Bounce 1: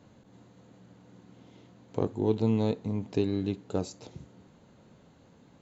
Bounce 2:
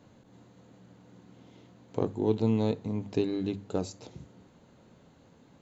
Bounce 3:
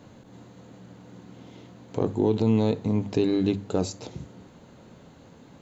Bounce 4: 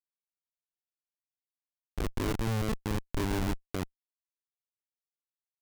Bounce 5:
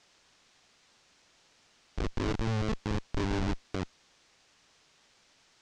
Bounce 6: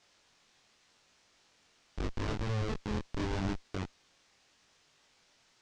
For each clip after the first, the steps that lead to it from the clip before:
notches 50/100/150/200 Hz
limiter -19.5 dBFS, peak gain reduction 6.5 dB; gain +8 dB
HPF 81 Hz 12 dB/oct; Schmitt trigger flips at -21.5 dBFS
requantised 10-bit, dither triangular; LPF 6400 Hz 24 dB/oct
chorus 0.82 Hz, delay 19.5 ms, depth 4.7 ms

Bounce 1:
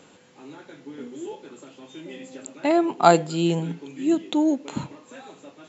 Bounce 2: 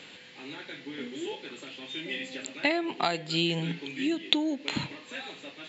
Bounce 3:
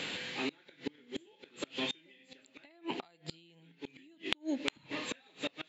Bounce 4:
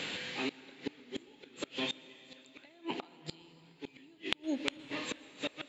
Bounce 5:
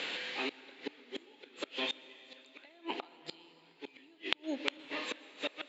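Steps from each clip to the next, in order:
compressor 12:1, threshold -24 dBFS, peak gain reduction 16 dB; band shelf 2800 Hz +13 dB; gain -1.5 dB
compressor 10:1, threshold -37 dBFS, peak gain reduction 19.5 dB; flipped gate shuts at -33 dBFS, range -29 dB; gain +9 dB
plate-style reverb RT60 3.6 s, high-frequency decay 0.95×, pre-delay 0.105 s, DRR 16.5 dB
BPF 360–5200 Hz; gain +1.5 dB

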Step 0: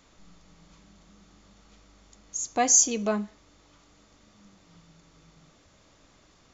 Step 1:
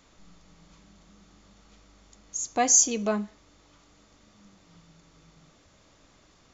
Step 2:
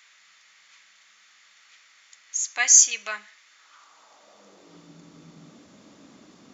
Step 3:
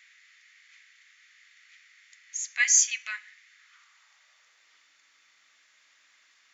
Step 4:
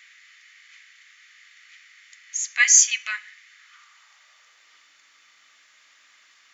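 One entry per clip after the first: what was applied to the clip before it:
nothing audible
low shelf 220 Hz +7.5 dB; high-pass sweep 1900 Hz -> 230 Hz, 3.48–5.02; gain +4.5 dB
resonant high-pass 1900 Hz, resonance Q 2.8; gain -7 dB
small resonant body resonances 1200/3000 Hz, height 6 dB; gain +6 dB

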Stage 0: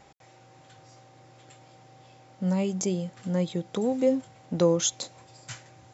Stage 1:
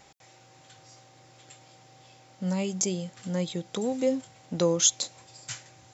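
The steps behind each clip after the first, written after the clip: high shelf 2300 Hz +9.5 dB; gain -3 dB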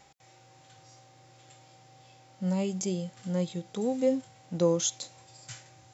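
harmonic-percussive split percussive -9 dB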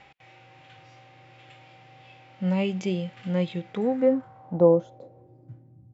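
low-pass sweep 2600 Hz -> 200 Hz, 3.58–5.88; gain +4 dB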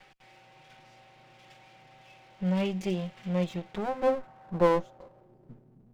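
minimum comb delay 5.4 ms; gain -2.5 dB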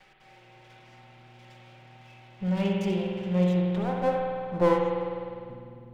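reverb RT60 2.3 s, pre-delay 50 ms, DRR -1 dB; gain -1 dB

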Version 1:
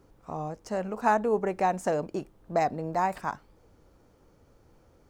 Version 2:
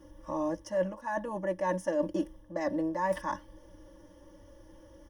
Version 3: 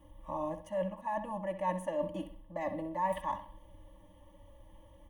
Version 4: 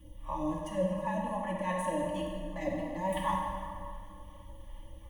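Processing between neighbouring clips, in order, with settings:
comb 3.5 ms, depth 91%; reverse; compressor 12:1, threshold -31 dBFS, peak gain reduction 17.5 dB; reverse; ripple EQ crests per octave 1.2, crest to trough 15 dB
fixed phaser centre 1500 Hz, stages 6; analogue delay 65 ms, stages 2048, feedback 39%, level -11 dB
phaser stages 2, 2.7 Hz, lowest notch 260–1400 Hz; plate-style reverb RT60 2.3 s, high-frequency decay 0.7×, DRR -1 dB; gain +5.5 dB

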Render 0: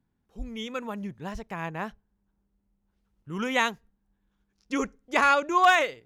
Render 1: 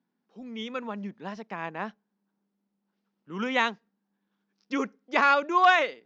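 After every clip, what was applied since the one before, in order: elliptic band-pass 200–5300 Hz, stop band 40 dB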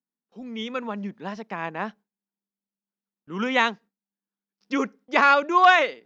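gate with hold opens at -56 dBFS; gain +4 dB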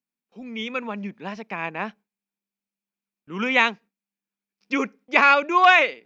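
bell 2400 Hz +10.5 dB 0.33 oct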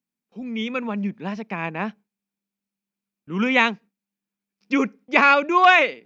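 bell 150 Hz +7.5 dB 2.4 oct

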